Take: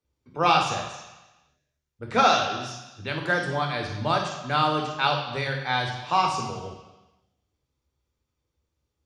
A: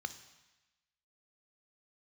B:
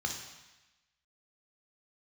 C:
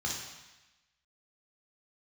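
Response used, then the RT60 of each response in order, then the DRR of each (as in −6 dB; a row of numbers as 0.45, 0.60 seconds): B; 1.0, 1.0, 1.0 seconds; 10.5, 1.5, −3.0 decibels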